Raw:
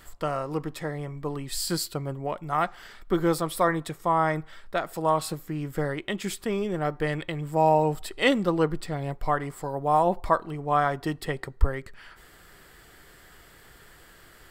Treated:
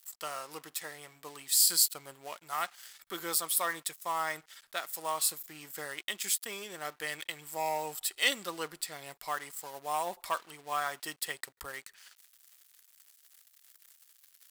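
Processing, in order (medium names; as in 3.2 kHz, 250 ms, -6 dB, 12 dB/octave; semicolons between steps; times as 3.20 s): crossover distortion -47.5 dBFS; differentiator; transformer saturation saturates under 2.7 kHz; trim +8.5 dB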